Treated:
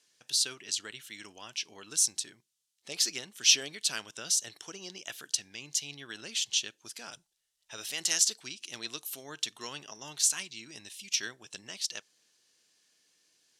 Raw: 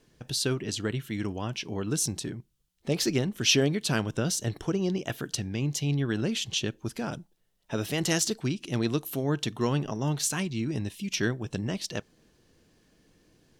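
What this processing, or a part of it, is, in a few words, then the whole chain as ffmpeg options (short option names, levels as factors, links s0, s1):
piezo pickup straight into a mixer: -filter_complex "[0:a]lowpass=7700,aderivative,asplit=3[s0][s1][s2];[s0]afade=t=out:st=7.12:d=0.02[s3];[s1]asubboost=boost=6.5:cutoff=85,afade=t=in:st=7.12:d=0.02,afade=t=out:st=7.77:d=0.02[s4];[s2]afade=t=in:st=7.77:d=0.02[s5];[s3][s4][s5]amix=inputs=3:normalize=0,volume=2.11"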